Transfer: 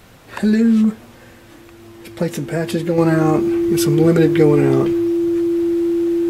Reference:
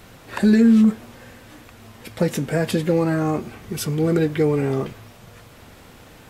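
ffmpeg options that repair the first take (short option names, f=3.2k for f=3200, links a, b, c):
-af "bandreject=f=340:w=30,asetnsamples=n=441:p=0,asendcmd='2.98 volume volume -5.5dB',volume=0dB"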